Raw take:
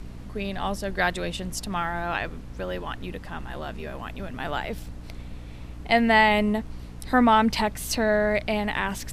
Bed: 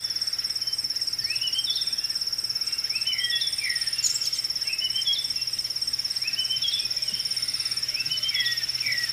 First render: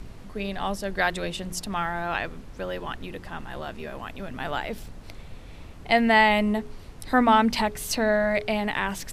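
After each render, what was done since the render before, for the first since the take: de-hum 60 Hz, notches 7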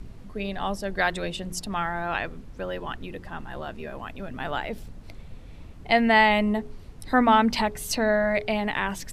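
noise reduction 6 dB, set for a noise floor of -43 dBFS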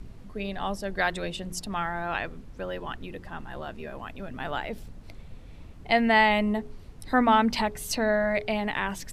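trim -2 dB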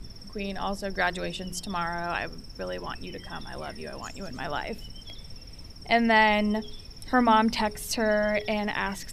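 add bed -22 dB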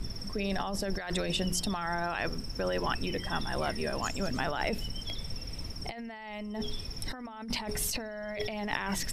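compressor with a negative ratio -34 dBFS, ratio -1

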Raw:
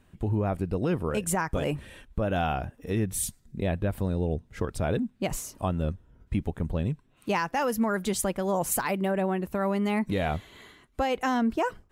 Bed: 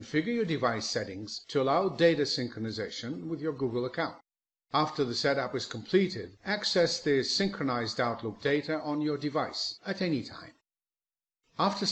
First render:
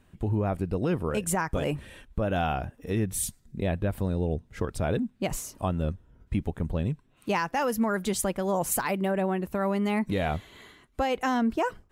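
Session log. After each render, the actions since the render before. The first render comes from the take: no audible change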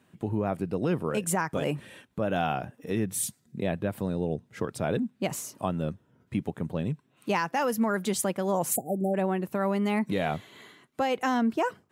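8.76–9.14 s: spectral selection erased 810–6900 Hz; high-pass 120 Hz 24 dB/octave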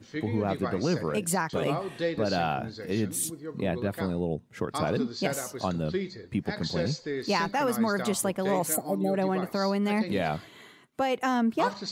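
add bed -6 dB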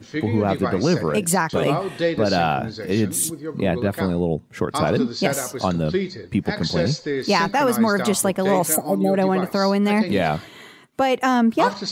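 trim +8 dB

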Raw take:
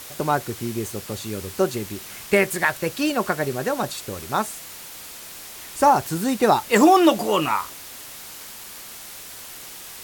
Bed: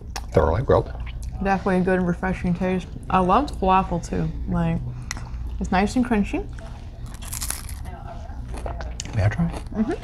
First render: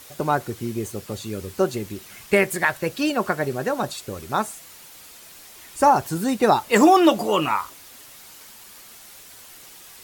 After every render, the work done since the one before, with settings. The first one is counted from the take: noise reduction 7 dB, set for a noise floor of -39 dBFS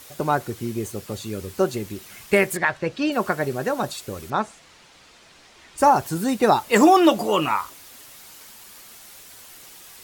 2.57–3.12 s: distance through air 110 m; 4.30–5.78 s: distance through air 110 m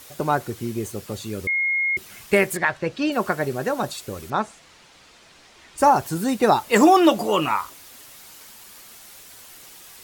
1.47–1.97 s: bleep 2.15 kHz -19 dBFS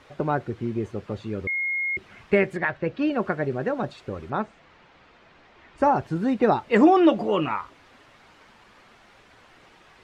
dynamic bell 1 kHz, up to -6 dB, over -33 dBFS, Q 1.1; low-pass 2.1 kHz 12 dB/octave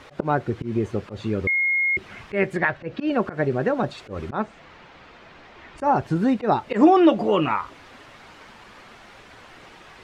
in parallel at +2.5 dB: compression 8:1, threshold -29 dBFS, peak gain reduction 17 dB; on the sum: slow attack 106 ms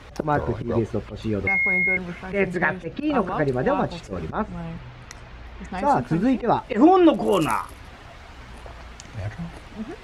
add bed -11 dB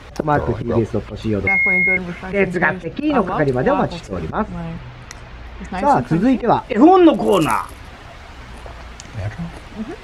trim +5.5 dB; peak limiter -1 dBFS, peak gain reduction 2 dB

